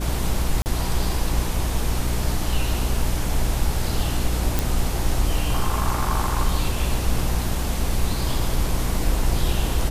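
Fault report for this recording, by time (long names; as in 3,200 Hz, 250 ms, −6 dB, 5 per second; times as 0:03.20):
mains hum 60 Hz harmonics 6 −26 dBFS
0:00.62–0:00.66: drop-out 39 ms
0:04.59: click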